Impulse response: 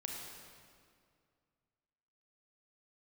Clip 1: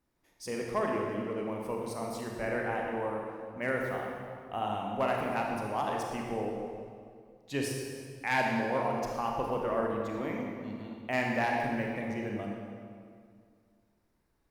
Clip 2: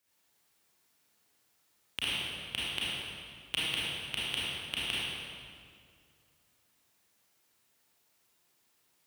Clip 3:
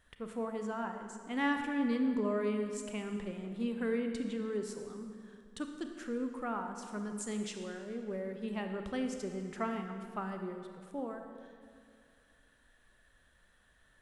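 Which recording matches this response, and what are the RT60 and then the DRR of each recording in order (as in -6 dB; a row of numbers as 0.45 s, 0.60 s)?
1; 2.2 s, 2.2 s, 2.2 s; -0.5 dB, -9.0 dB, 5.0 dB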